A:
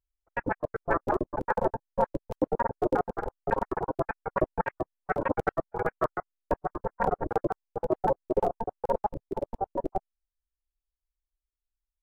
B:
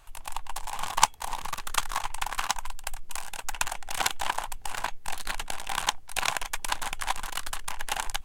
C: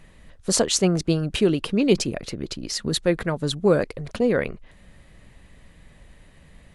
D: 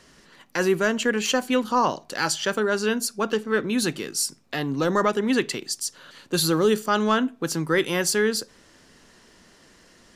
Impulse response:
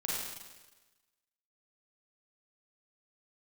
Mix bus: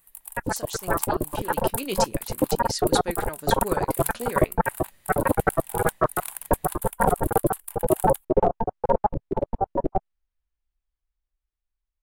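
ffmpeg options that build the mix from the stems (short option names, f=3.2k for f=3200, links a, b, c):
-filter_complex "[0:a]bass=f=250:g=13,treble=f=4k:g=-14,dynaudnorm=f=690:g=7:m=7dB,volume=2.5dB[a];[1:a]aexciter=amount=12.6:drive=7.3:freq=8.8k,volume=-16dB[b];[2:a]highshelf=f=3.5k:g=10,flanger=delay=6:depth=7.8:regen=55:speed=0.37:shape=triangular,volume=-4.5dB,afade=t=in:st=1.35:d=0.53:silence=0.281838[c];[a][b][c]amix=inputs=3:normalize=0,lowshelf=f=290:g=-10.5"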